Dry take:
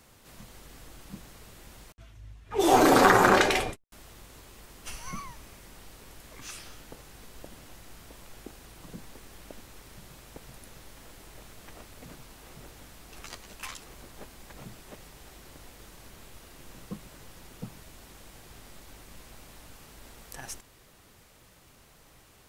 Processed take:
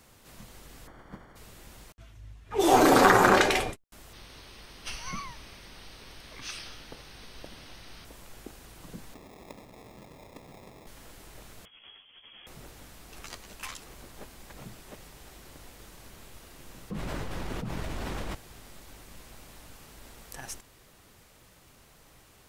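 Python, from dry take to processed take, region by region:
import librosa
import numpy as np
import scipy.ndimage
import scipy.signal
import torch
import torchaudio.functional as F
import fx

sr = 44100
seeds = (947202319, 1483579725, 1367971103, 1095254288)

y = fx.spec_flatten(x, sr, power=0.57, at=(0.86, 1.35), fade=0.02)
y = fx.savgol(y, sr, points=41, at=(0.86, 1.35), fade=0.02)
y = fx.chain(y, sr, fx.savgol(points=15),
    fx.high_shelf(hz=2700.0, db=11.0), at=(4.13, 8.05))
y = fx.chain(y, sr, fx.highpass(hz=130.0, slope=12),
    fx.high_shelf(hz=10000.0, db=9.0),
    fx.sample_hold(seeds[0], rate_hz=1500.0, jitter_pct=0), at=(9.14, 10.87))
y = fx.chain(y, sr, fx.over_compress(threshold_db=-50.0, ratio=-0.5),
    fx.freq_invert(carrier_hz=3300),
    fx.ensemble(), at=(11.65, 12.47))
y = fx.chain(y, sr, fx.lowpass(hz=1800.0, slope=6),
    fx.env_flatten(amount_pct=100), at=(16.9, 18.35))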